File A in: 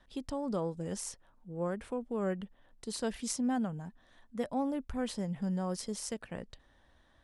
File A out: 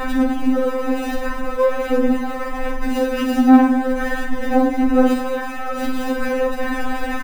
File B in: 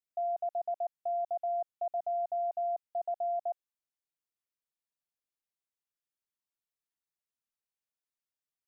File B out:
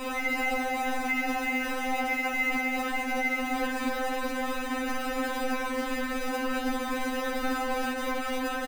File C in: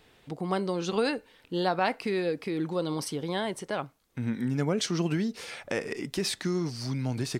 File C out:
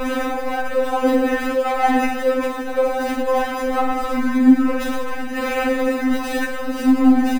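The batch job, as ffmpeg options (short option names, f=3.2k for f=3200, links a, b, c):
-filter_complex "[0:a]aeval=exprs='val(0)+0.5*0.0447*sgn(val(0))':c=same,highshelf=f=4.3k:g=-9,bandreject=f=60:t=h:w=6,bandreject=f=120:t=h:w=6,bandreject=f=180:t=h:w=6,bandreject=f=240:t=h:w=6,acrossover=split=200[a][b];[a]acompressor=threshold=-40dB:ratio=3[c];[c][b]amix=inputs=2:normalize=0,aresample=16000,acrusher=bits=6:mix=0:aa=0.000001,aresample=44100,flanger=delay=9.1:depth=9.8:regen=-40:speed=1:shape=triangular,aecho=1:1:50|110|182|268.4|372.1:0.631|0.398|0.251|0.158|0.1,acrossover=split=180|2200[d][e][f];[e]asoftclip=type=tanh:threshold=-27dB[g];[f]acrusher=samples=40:mix=1:aa=0.000001[h];[d][g][h]amix=inputs=3:normalize=0,alimiter=level_in=27dB:limit=-1dB:release=50:level=0:latency=1,afftfilt=real='re*3.46*eq(mod(b,12),0)':imag='im*3.46*eq(mod(b,12),0)':win_size=2048:overlap=0.75,volume=-8.5dB"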